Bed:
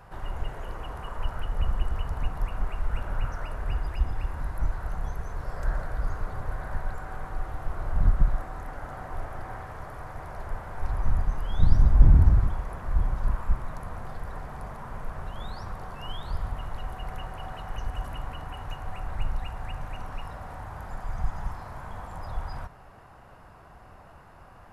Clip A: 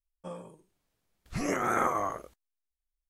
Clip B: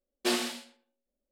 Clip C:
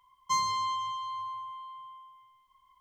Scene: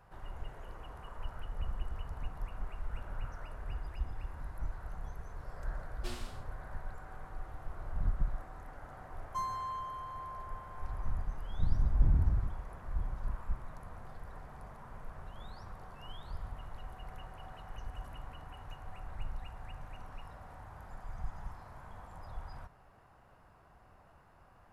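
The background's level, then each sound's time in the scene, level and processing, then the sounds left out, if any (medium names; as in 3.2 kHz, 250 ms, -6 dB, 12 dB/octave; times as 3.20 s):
bed -11 dB
5.79 s: add B -17.5 dB
9.05 s: add C -7 dB + high-order bell 3.4 kHz -13.5 dB 2.5 oct
not used: A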